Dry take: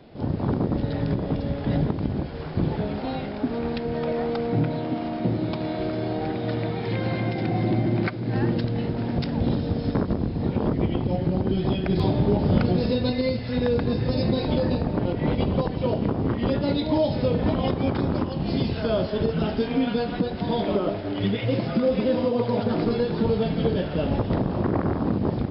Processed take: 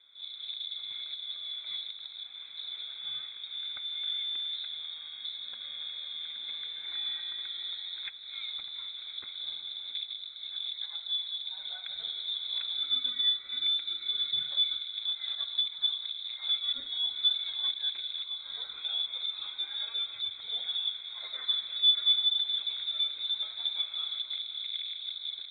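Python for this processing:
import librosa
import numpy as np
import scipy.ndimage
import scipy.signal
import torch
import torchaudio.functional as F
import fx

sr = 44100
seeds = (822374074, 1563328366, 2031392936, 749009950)

y = fx.vowel_filter(x, sr, vowel='e')
y = fx.freq_invert(y, sr, carrier_hz=4000)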